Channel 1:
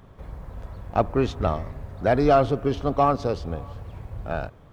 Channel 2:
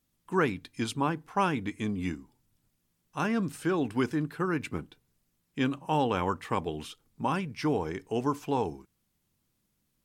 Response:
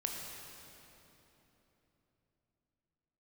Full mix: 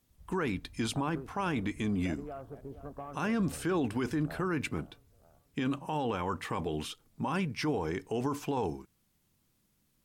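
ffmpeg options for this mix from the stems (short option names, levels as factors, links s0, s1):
-filter_complex "[0:a]afwtdn=0.0316,acompressor=threshold=0.0562:ratio=6,volume=0.178,asplit=2[s0][s1];[s1]volume=0.224[s2];[1:a]volume=1.41[s3];[s2]aecho=0:1:469|938|1407|1876|2345|2814|3283|3752:1|0.55|0.303|0.166|0.0915|0.0503|0.0277|0.0152[s4];[s0][s3][s4]amix=inputs=3:normalize=0,alimiter=limit=0.0668:level=0:latency=1:release=15"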